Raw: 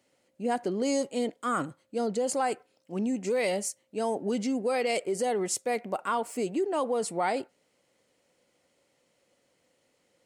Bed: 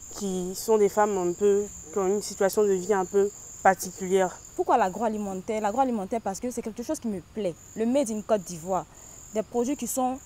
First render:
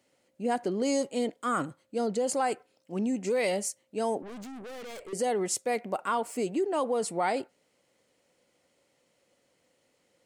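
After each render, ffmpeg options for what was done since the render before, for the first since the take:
-filter_complex "[0:a]asettb=1/sr,asplit=3[s0][s1][s2];[s0]atrim=end=4.224[s3];[s1]atrim=start=4.22:end=5.13,asetpts=PTS-STARTPTS,afade=t=in:d=0.004:c=qsin,afade=t=out:st=0.906:d=0.004:c=qsin,aeval=exprs='(tanh(112*val(0)+0.25)-tanh(0.25))/112':c=same[s4];[s2]atrim=start=5.126[s5];[s3][s4]acrossfade=d=0.004:c1=hsin:c2=qsin[s6];[s6][s5]acrossfade=d=0.004:c1=qsin:c2=hsin"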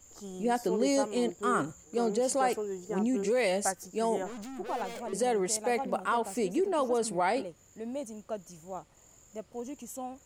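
-filter_complex "[1:a]volume=0.224[s0];[0:a][s0]amix=inputs=2:normalize=0"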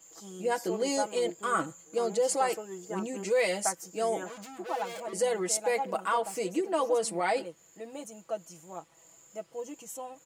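-af "highpass=f=380:p=1,aecho=1:1:6.1:0.77"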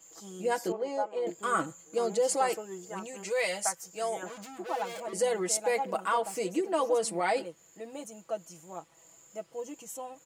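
-filter_complex "[0:a]asettb=1/sr,asplit=3[s0][s1][s2];[s0]atrim=end=0.724[s3];[s1]atrim=start=0.72:end=1.27,asetpts=PTS-STARTPTS,afade=t=in:d=0.004:c=qsin,afade=t=out:st=0.546:d=0.004:c=qsin,bandpass=f=750:t=q:w=1.1[s4];[s2]atrim=start=1.266[s5];[s3][s4]acrossfade=d=0.004:c1=hsin:c2=qsin[s6];[s6][s5]acrossfade=d=0.004:c1=qsin:c2=hsin,asettb=1/sr,asplit=3[s7][s8][s9];[s7]atrim=end=2.894[s10];[s8]atrim=start=2.89:end=4.23,asetpts=PTS-STARTPTS,afade=t=in:d=0.004:c=qsin,afade=t=out:st=1.336:d=0.004:c=qsin,equalizer=f=280:t=o:w=1.1:g=-14[s11];[s9]atrim=start=4.226[s12];[s10][s11]acrossfade=d=0.004:c1=hsin:c2=qsin[s13];[s13][s12]acrossfade=d=0.004:c1=qsin:c2=hsin"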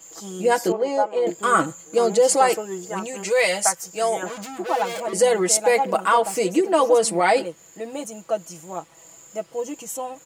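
-af "volume=3.35"

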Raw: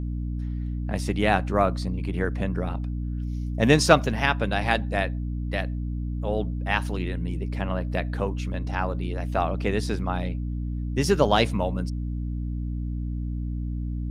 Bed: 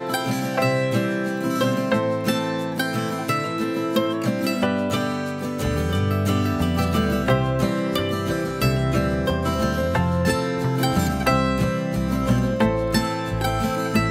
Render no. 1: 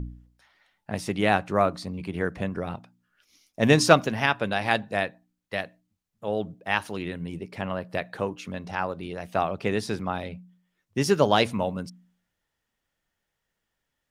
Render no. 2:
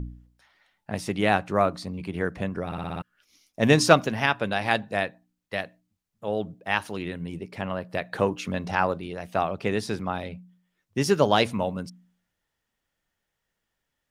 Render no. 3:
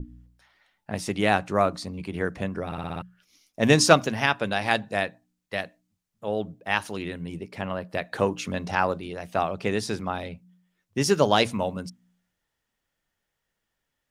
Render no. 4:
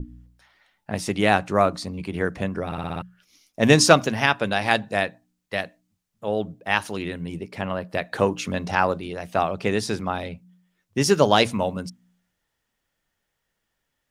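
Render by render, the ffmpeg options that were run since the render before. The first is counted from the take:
-af "bandreject=f=60:t=h:w=4,bandreject=f=120:t=h:w=4,bandreject=f=180:t=h:w=4,bandreject=f=240:t=h:w=4,bandreject=f=300:t=h:w=4"
-filter_complex "[0:a]asettb=1/sr,asplit=3[s0][s1][s2];[s0]atrim=end=8.124[s3];[s1]atrim=start=8.12:end=8.98,asetpts=PTS-STARTPTS,afade=t=in:d=0.004:c=qsin,afade=t=out:st=0.856:d=0.004:c=qsin,acontrast=36[s4];[s2]atrim=start=8.976[s5];[s3][s4]acrossfade=d=0.004:c1=hsin:c2=qsin[s6];[s6][s5]acrossfade=d=0.004:c1=qsin:c2=hsin,asplit=7[s7][s8][s9][s10][s11][s12][s13];[s7]atrim=end=2.722[s14];[s8]atrim=start=2.658:end=2.722[s15];[s9]atrim=start=2.658:end=2.722[s16];[s10]atrim=start=2.658:end=2.722[s17];[s11]atrim=start=2.658:end=2.722[s18];[s12]atrim=start=2.658:end=2.722[s19];[s13]atrim=start=3.018[s20];[s14][s15]acrossfade=d=0.004:c1=hsin:c2=hsin[s21];[s21][s16]acrossfade=d=0.004:c1=hsin:c2=hsin[s22];[s22][s17]acrossfade=d=0.004:c1=hsin:c2=hsin[s23];[s23][s18]acrossfade=d=0.004:c1=hsin:c2=hsin[s24];[s24][s19]acrossfade=d=0.004:c1=hsin:c2=hsin[s25];[s25][s20]acrossfade=d=0.004:c1=hsin:c2=hsin"
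-af "bandreject=f=60:t=h:w=6,bandreject=f=120:t=h:w=6,bandreject=f=180:t=h:w=6,adynamicequalizer=threshold=0.00562:dfrequency=7100:dqfactor=0.9:tfrequency=7100:tqfactor=0.9:attack=5:release=100:ratio=0.375:range=2.5:mode=boostabove:tftype=bell"
-af "volume=1.41,alimiter=limit=0.891:level=0:latency=1"

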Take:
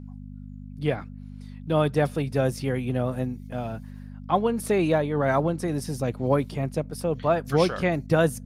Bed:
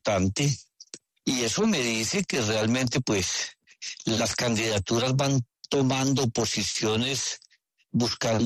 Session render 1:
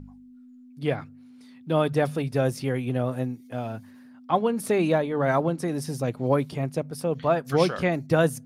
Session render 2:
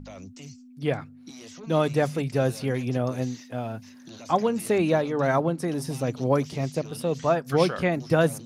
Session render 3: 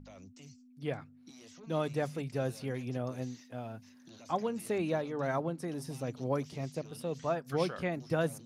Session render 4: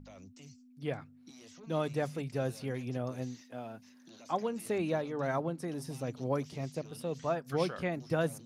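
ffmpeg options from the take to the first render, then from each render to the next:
-af "bandreject=f=50:t=h:w=4,bandreject=f=100:t=h:w=4,bandreject=f=150:t=h:w=4,bandreject=f=200:t=h:w=4"
-filter_complex "[1:a]volume=0.106[s0];[0:a][s0]amix=inputs=2:normalize=0"
-af "volume=0.316"
-filter_complex "[0:a]asettb=1/sr,asplit=3[s0][s1][s2];[s0]atrim=end=3.414[s3];[s1]atrim=start=3.41:end=4.66,asetpts=PTS-STARTPTS,afade=t=in:d=0.004:c=qsin,afade=t=out:st=1.246:d=0.004:c=qsin,highpass=170[s4];[s2]atrim=start=4.656[s5];[s3][s4]acrossfade=d=0.004:c1=hsin:c2=qsin[s6];[s6][s5]acrossfade=d=0.004:c1=qsin:c2=hsin"

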